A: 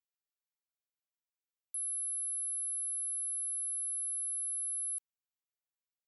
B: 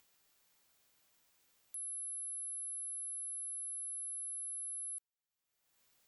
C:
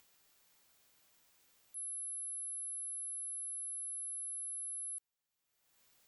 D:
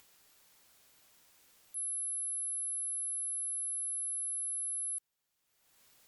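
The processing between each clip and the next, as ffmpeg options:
-af "acompressor=mode=upward:threshold=-43dB:ratio=2.5,volume=-6dB"
-af "alimiter=level_in=18.5dB:limit=-24dB:level=0:latency=1,volume=-18.5dB,volume=3dB"
-af "volume=5.5dB" -ar 48000 -c:a libopus -b:a 256k

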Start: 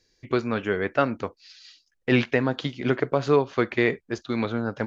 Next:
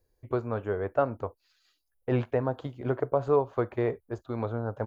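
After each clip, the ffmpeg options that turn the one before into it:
-af "firequalizer=gain_entry='entry(110,0);entry(160,-12);entry(290,-10);entry(430,-5);entry(610,-2);entry(960,-4);entry(2000,-20);entry(3400,-21);entry(5700,-25);entry(10000,6)':delay=0.05:min_phase=1,volume=1.5dB"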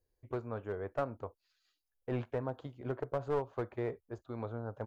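-af "aeval=exprs='clip(val(0),-1,0.0668)':c=same,volume=-8.5dB"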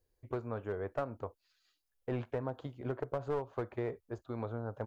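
-af "acompressor=threshold=-36dB:ratio=2,volume=2.5dB"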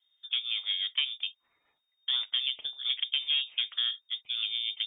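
-af "lowpass=f=3.1k:t=q:w=0.5098,lowpass=f=3.1k:t=q:w=0.6013,lowpass=f=3.1k:t=q:w=0.9,lowpass=f=3.1k:t=q:w=2.563,afreqshift=-3700,volume=6dB"

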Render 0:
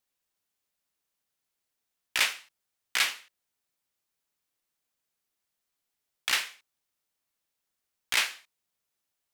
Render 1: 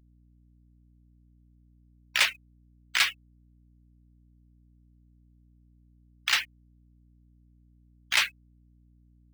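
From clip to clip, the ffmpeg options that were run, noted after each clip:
-af "afftfilt=real='re*gte(hypot(re,im),0.0355)':imag='im*gte(hypot(re,im),0.0355)':win_size=1024:overlap=0.75,acrusher=bits=3:mode=log:mix=0:aa=0.000001,aeval=exprs='val(0)+0.000891*(sin(2*PI*60*n/s)+sin(2*PI*2*60*n/s)/2+sin(2*PI*3*60*n/s)/3+sin(2*PI*4*60*n/s)/4+sin(2*PI*5*60*n/s)/5)':c=same,volume=2.5dB"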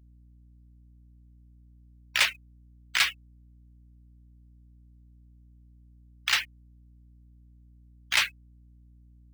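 -af "equalizer=f=69:w=0.66:g=6"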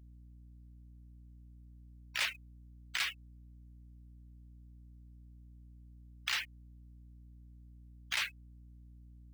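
-af "alimiter=limit=-21dB:level=0:latency=1:release=191"

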